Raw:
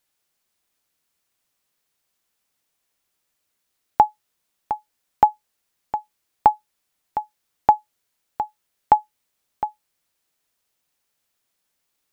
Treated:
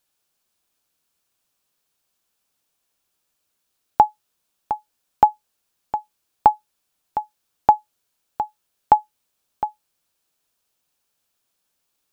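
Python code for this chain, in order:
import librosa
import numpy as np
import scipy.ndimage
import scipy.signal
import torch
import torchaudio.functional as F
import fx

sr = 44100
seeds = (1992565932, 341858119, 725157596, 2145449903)

y = fx.peak_eq(x, sr, hz=2000.0, db=-6.5, octaves=0.27)
y = F.gain(torch.from_numpy(y), 1.0).numpy()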